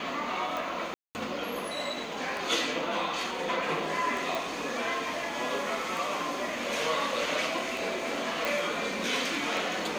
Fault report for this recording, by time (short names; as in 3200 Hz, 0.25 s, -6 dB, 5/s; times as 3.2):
tick 33 1/3 rpm
0.94–1.15 gap 0.209 s
4.35 pop
8.45 pop